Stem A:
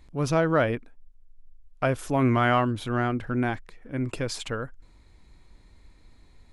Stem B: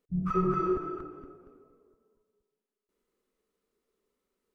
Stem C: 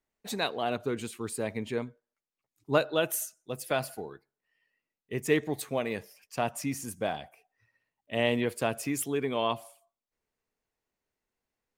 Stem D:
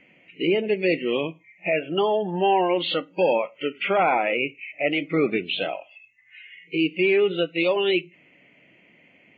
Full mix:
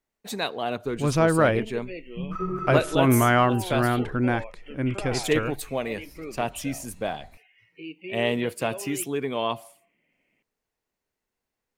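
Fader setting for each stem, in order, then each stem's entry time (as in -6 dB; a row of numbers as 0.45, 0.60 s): +2.5, -2.5, +2.0, -16.5 dB; 0.85, 2.05, 0.00, 1.05 s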